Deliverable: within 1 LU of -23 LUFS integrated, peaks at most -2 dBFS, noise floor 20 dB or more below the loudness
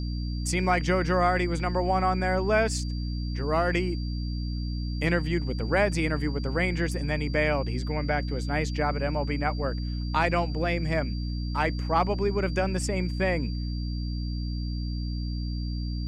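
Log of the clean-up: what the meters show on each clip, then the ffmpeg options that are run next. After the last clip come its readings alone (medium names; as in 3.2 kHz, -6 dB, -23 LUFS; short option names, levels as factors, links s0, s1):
hum 60 Hz; highest harmonic 300 Hz; hum level -28 dBFS; steady tone 4.7 kHz; tone level -44 dBFS; loudness -27.5 LUFS; peak level -10.0 dBFS; loudness target -23.0 LUFS
-> -af "bandreject=f=60:t=h:w=4,bandreject=f=120:t=h:w=4,bandreject=f=180:t=h:w=4,bandreject=f=240:t=h:w=4,bandreject=f=300:t=h:w=4"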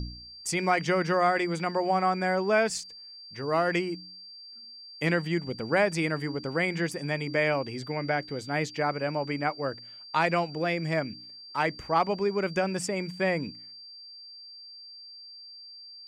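hum not found; steady tone 4.7 kHz; tone level -44 dBFS
-> -af "bandreject=f=4700:w=30"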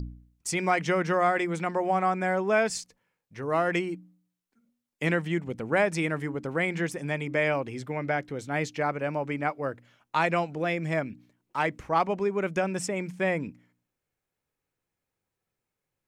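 steady tone not found; loudness -28.5 LUFS; peak level -11.0 dBFS; loudness target -23.0 LUFS
-> -af "volume=1.88"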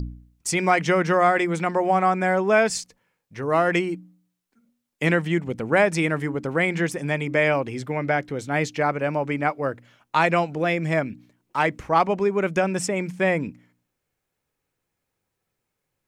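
loudness -23.0 LUFS; peak level -5.5 dBFS; noise floor -81 dBFS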